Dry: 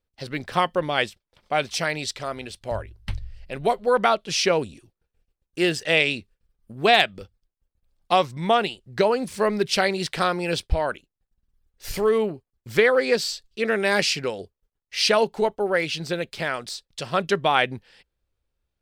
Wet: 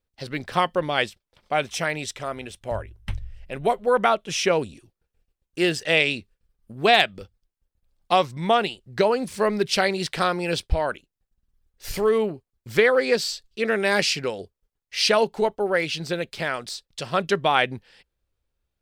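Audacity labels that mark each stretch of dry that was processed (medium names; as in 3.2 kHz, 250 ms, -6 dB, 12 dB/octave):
1.540000	4.510000	peaking EQ 4.5 kHz -10 dB 0.35 oct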